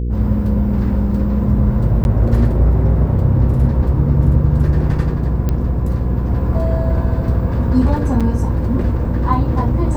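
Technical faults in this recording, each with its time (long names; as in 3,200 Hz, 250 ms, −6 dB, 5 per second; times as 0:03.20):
mains hum 60 Hz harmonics 8 −19 dBFS
0:02.04–0:02.05: drop-out 11 ms
0:05.49: click −8 dBFS
0:08.20–0:08.21: drop-out 6.1 ms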